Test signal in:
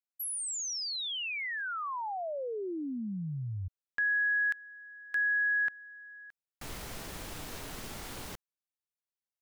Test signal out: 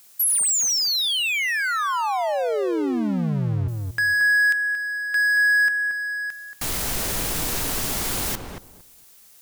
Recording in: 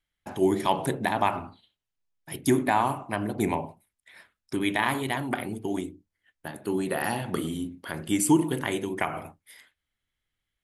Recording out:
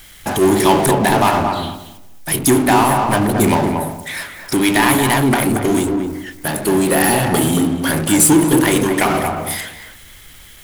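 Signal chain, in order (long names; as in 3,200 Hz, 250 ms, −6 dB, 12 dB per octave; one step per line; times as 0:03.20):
high-shelf EQ 5,500 Hz +10.5 dB
power curve on the samples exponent 0.5
on a send: feedback echo with a low-pass in the loop 228 ms, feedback 19%, low-pass 1,200 Hz, level −3.5 dB
on the sum: level +3.5 dB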